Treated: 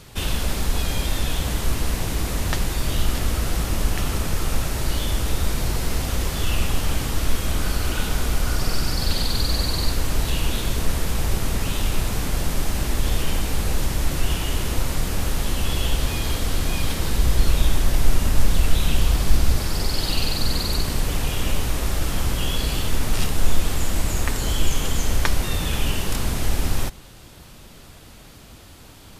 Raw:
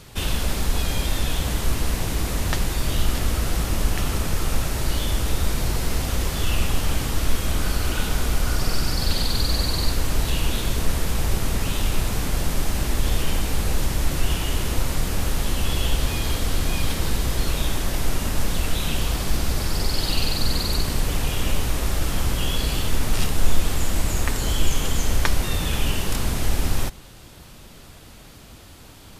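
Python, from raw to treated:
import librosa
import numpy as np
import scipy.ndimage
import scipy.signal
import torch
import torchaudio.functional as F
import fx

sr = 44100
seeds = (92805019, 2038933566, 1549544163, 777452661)

y = fx.low_shelf(x, sr, hz=93.0, db=7.5, at=(17.18, 19.56))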